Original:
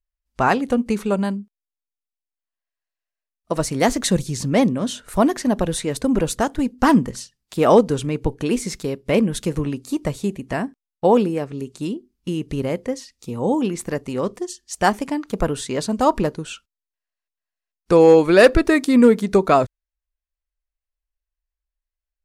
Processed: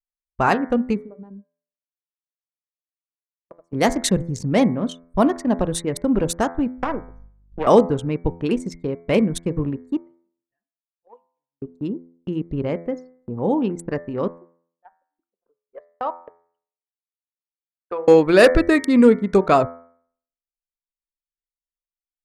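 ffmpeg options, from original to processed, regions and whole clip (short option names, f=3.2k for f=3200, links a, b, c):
-filter_complex "[0:a]asettb=1/sr,asplit=3[a][b][c];[a]atrim=end=1.014[d];[b]atrim=start=1.01:end=3.73,asetpts=PTS-STARTPTS,afade=t=in:d=0.004:c=qsin,afade=t=out:st=2.716:d=0.004:c=qsin,highpass=f=360:p=1,acompressor=threshold=-30dB:ratio=16:attack=3.2:release=140:knee=1:detection=peak[e];[c]atrim=start=3.726[f];[d][e]acrossfade=d=0.004:c1=hsin:c2=qsin[g];[g][f]acrossfade=d=0.004:c1=qsin:c2=hsin,asettb=1/sr,asplit=3[h][i][j];[h]atrim=end=6.784[k];[i]atrim=start=6.78:end=7.67,asetpts=PTS-STARTPTS,afade=t=in:d=0.004:c=qsin,afade=t=out:st=0.886:d=0.004:c=qsin,aeval=exprs='max(val(0),0)':c=same,acrossover=split=370|2200[l][m][n];[l]acompressor=threshold=-32dB:ratio=4[o];[m]acompressor=threshold=-20dB:ratio=4[p];[n]acompressor=threshold=-46dB:ratio=4[q];[o][p][q]amix=inputs=3:normalize=0,aeval=exprs='val(0)+0.0126*(sin(2*PI*50*n/s)+sin(2*PI*2*50*n/s)/2+sin(2*PI*3*50*n/s)/3+sin(2*PI*4*50*n/s)/4+sin(2*PI*5*50*n/s)/5)':c=same[r];[j]atrim=start=7.666[s];[k][r]acrossfade=d=0.004:c1=hsin:c2=qsin[t];[t][s]acrossfade=d=0.004:c1=qsin:c2=hsin,asettb=1/sr,asplit=3[u][v][w];[u]atrim=end=10.014[x];[v]atrim=start=10.01:end=11.62,asetpts=PTS-STARTPTS,afade=t=in:d=0.004:c=qsin,afade=t=out:st=1.606:d=0.004:c=qsin,lowpass=4.8k,aderivative[y];[w]atrim=start=11.616[z];[x][y]acrossfade=d=0.004:c1=hsin:c2=qsin[aa];[aa][z]acrossfade=d=0.004:c1=qsin:c2=hsin,asettb=1/sr,asplit=3[ab][ac][ad];[ab]atrim=end=14.384[ae];[ac]atrim=start=14.38:end=18.08,asetpts=PTS-STARTPTS,afade=t=in:d=0.004:c=qsin,afade=t=out:st=3.696:d=0.004:c=qsin,highpass=680,lowpass=2.4k,aeval=exprs='val(0)*pow(10,-23*if(lt(mod(3.7*n/s,1),2*abs(3.7)/1000),1-mod(3.7*n/s,1)/(2*abs(3.7)/1000),(mod(3.7*n/s,1)-2*abs(3.7)/1000)/(1-2*abs(3.7)/1000))/20)':c=same[af];[ad]atrim=start=18.076[ag];[ae][af]acrossfade=d=0.004:c1=hsin:c2=qsin[ah];[ah][ag]acrossfade=d=0.004:c1=qsin:c2=hsin,anlmdn=251,agate=range=-17dB:threshold=-43dB:ratio=16:detection=peak,bandreject=f=84.68:t=h:w=4,bandreject=f=169.36:t=h:w=4,bandreject=f=254.04:t=h:w=4,bandreject=f=338.72:t=h:w=4,bandreject=f=423.4:t=h:w=4,bandreject=f=508.08:t=h:w=4,bandreject=f=592.76:t=h:w=4,bandreject=f=677.44:t=h:w=4,bandreject=f=762.12:t=h:w=4,bandreject=f=846.8:t=h:w=4,bandreject=f=931.48:t=h:w=4,bandreject=f=1.01616k:t=h:w=4,bandreject=f=1.10084k:t=h:w=4,bandreject=f=1.18552k:t=h:w=4,bandreject=f=1.2702k:t=h:w=4,bandreject=f=1.35488k:t=h:w=4,bandreject=f=1.43956k:t=h:w=4,bandreject=f=1.52424k:t=h:w=4,bandreject=f=1.60892k:t=h:w=4,bandreject=f=1.6936k:t=h:w=4,bandreject=f=1.77828k:t=h:w=4,bandreject=f=1.86296k:t=h:w=4,bandreject=f=1.94764k:t=h:w=4,bandreject=f=2.03232k:t=h:w=4,bandreject=f=2.117k:t=h:w=4,bandreject=f=2.20168k:t=h:w=4,bandreject=f=2.28636k:t=h:w=4"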